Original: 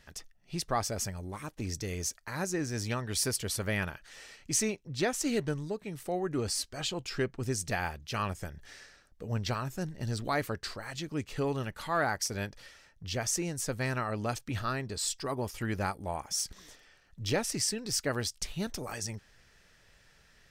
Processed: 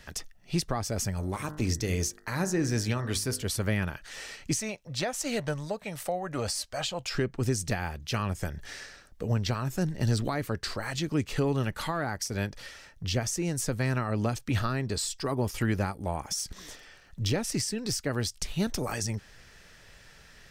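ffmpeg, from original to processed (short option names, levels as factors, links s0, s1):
-filter_complex "[0:a]asettb=1/sr,asplit=3[s0][s1][s2];[s0]atrim=end=1.144[s3];[s1]atrim=start=1.14:end=3.45,asetpts=PTS-STARTPTS,afade=t=in:d=0.004:c=qsin,afade=t=out:st=2.306:d=0.004:c=qsin,bandreject=f=50.44:t=h:w=4,bandreject=f=100.88:t=h:w=4,bandreject=f=151.32:t=h:w=4,bandreject=f=201.76:t=h:w=4,bandreject=f=252.2:t=h:w=4,bandreject=f=302.64:t=h:w=4,bandreject=f=353.08:t=h:w=4,bandreject=f=403.52:t=h:w=4,bandreject=f=453.96:t=h:w=4,bandreject=f=504.4:t=h:w=4,bandreject=f=554.84:t=h:w=4,bandreject=f=605.28:t=h:w=4,bandreject=f=655.72:t=h:w=4,bandreject=f=706.16:t=h:w=4,bandreject=f=756.6:t=h:w=4,bandreject=f=807.04:t=h:w=4,bandreject=f=857.48:t=h:w=4,bandreject=f=907.92:t=h:w=4,bandreject=f=958.36:t=h:w=4,bandreject=f=1008.8:t=h:w=4,bandreject=f=1059.24:t=h:w=4,bandreject=f=1109.68:t=h:w=4,bandreject=f=1160.12:t=h:w=4,bandreject=f=1210.56:t=h:w=4,bandreject=f=1261:t=h:w=4,bandreject=f=1311.44:t=h:w=4,bandreject=f=1361.88:t=h:w=4,bandreject=f=1412.32:t=h:w=4,bandreject=f=1462.76:t=h:w=4,bandreject=f=1513.2:t=h:w=4,bandreject=f=1563.64:t=h:w=4,bandreject=f=1614.08:t=h:w=4,bandreject=f=1664.52:t=h:w=4,bandreject=f=1714.96:t=h:w=4,bandreject=f=1765.4:t=h:w=4,bandreject=f=1815.84:t=h:w=4,bandreject=f=1866.28:t=h:w=4,bandreject=f=1916.72:t=h:w=4,bandreject=f=1967.16:t=h:w=4[s4];[s2]atrim=start=3.446[s5];[s3][s4]acrossfade=d=0.004:c1=hsin:c2=qsin[s6];[s6][s5]acrossfade=d=0.004:c1=qsin:c2=hsin,asettb=1/sr,asplit=3[s7][s8][s9];[s7]atrim=end=4.594[s10];[s8]atrim=start=4.59:end=7.15,asetpts=PTS-STARTPTS,afade=t=in:d=0.004:c=qsin,afade=t=out:st=2.556:d=0.004:c=qsin,lowshelf=f=470:t=q:w=3:g=-6.5[s11];[s9]atrim=start=7.146[s12];[s10][s11]acrossfade=d=0.004:c1=hsin:c2=qsin[s13];[s13][s12]acrossfade=d=0.004:c1=qsin:c2=hsin,alimiter=limit=0.0668:level=0:latency=1:release=395,acrossover=split=330[s14][s15];[s15]acompressor=threshold=0.01:ratio=3[s16];[s14][s16]amix=inputs=2:normalize=0,volume=2.66"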